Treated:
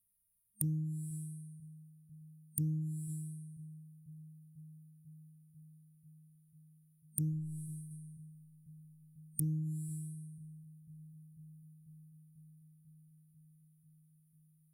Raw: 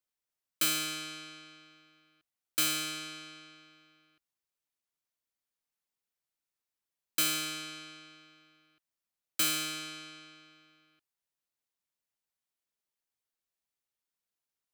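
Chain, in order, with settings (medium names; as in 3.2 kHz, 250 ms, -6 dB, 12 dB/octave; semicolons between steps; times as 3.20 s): 7.29–7.91 s: companding laws mixed up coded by A; FFT band-reject 210–8800 Hz; low-pass that closes with the level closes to 650 Hz, closed at -33.5 dBFS; rippled EQ curve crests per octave 1.8, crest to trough 10 dB; on a send: bucket-brigade echo 493 ms, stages 2048, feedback 79%, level -16.5 dB; on the sum: loudspeaker Doppler distortion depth 0.5 ms; trim +15 dB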